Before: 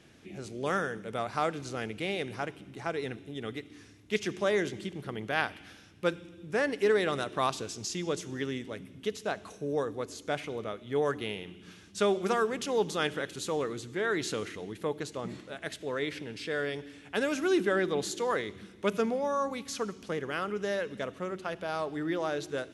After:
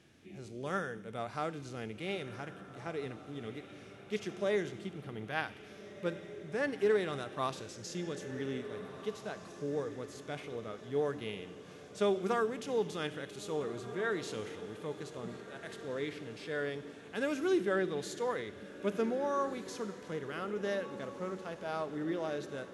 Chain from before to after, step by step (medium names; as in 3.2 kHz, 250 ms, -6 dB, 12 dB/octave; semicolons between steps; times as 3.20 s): harmonic-percussive split percussive -8 dB; echo that smears into a reverb 1689 ms, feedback 51%, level -13 dB; trim -3 dB